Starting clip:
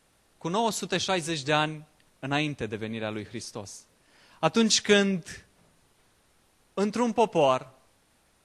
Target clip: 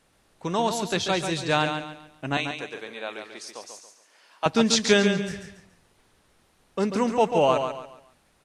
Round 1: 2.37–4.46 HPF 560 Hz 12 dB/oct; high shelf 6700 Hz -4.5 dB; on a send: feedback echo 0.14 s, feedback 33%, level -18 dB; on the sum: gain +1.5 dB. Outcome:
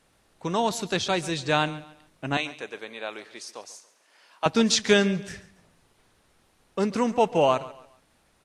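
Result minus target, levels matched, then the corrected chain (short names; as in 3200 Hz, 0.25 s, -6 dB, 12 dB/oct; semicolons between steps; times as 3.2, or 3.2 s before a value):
echo-to-direct -11 dB
2.37–4.46 HPF 560 Hz 12 dB/oct; high shelf 6700 Hz -4.5 dB; on a send: feedback echo 0.14 s, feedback 33%, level -7 dB; on the sum: gain +1.5 dB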